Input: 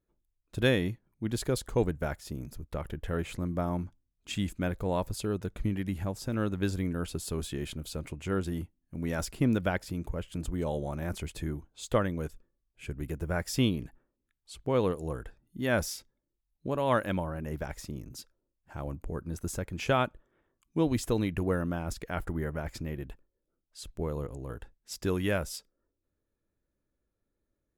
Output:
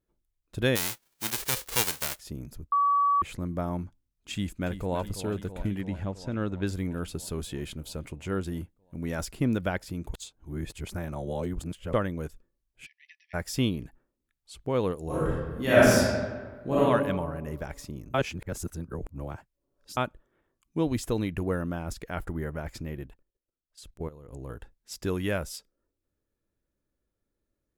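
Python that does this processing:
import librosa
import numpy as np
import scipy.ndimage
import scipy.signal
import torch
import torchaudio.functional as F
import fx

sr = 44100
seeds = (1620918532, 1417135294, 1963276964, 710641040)

y = fx.envelope_flatten(x, sr, power=0.1, at=(0.75, 2.18), fade=0.02)
y = fx.echo_throw(y, sr, start_s=4.33, length_s=0.63, ms=330, feedback_pct=75, wet_db=-10.5)
y = fx.air_absorb(y, sr, metres=76.0, at=(5.81, 6.67))
y = fx.brickwall_bandpass(y, sr, low_hz=1700.0, high_hz=6000.0, at=(12.85, 13.33), fade=0.02)
y = fx.reverb_throw(y, sr, start_s=15.04, length_s=1.76, rt60_s=1.5, drr_db=-10.0)
y = fx.level_steps(y, sr, step_db=16, at=(23.06, 24.33))
y = fx.edit(y, sr, fx.bleep(start_s=2.72, length_s=0.5, hz=1140.0, db=-20.0),
    fx.reverse_span(start_s=10.14, length_s=1.79),
    fx.reverse_span(start_s=18.14, length_s=1.83), tone=tone)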